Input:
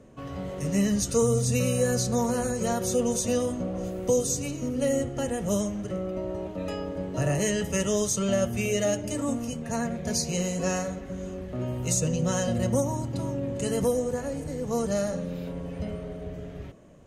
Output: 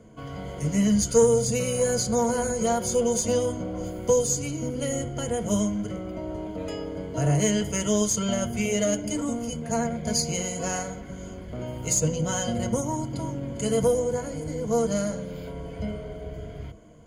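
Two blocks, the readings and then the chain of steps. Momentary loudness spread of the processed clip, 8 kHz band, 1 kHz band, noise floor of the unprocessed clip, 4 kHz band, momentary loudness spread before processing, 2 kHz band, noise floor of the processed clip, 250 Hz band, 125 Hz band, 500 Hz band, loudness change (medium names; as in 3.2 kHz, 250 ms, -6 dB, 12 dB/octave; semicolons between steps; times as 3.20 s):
14 LU, +3.0 dB, +3.0 dB, -39 dBFS, +2.5 dB, 10 LU, 0.0 dB, -39 dBFS, +1.0 dB, 0.0 dB, +2.0 dB, +2.0 dB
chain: rippled EQ curve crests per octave 1.8, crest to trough 12 dB; Chebyshev shaper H 4 -25 dB, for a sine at -7.5 dBFS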